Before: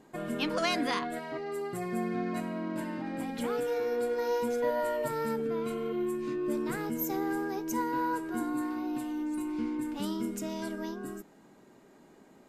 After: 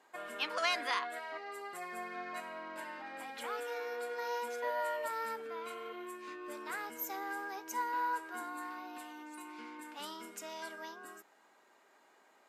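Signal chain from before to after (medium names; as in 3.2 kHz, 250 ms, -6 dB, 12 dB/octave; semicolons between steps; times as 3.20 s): high-pass 940 Hz 12 dB/octave; treble shelf 3.6 kHz -7 dB; trim +1.5 dB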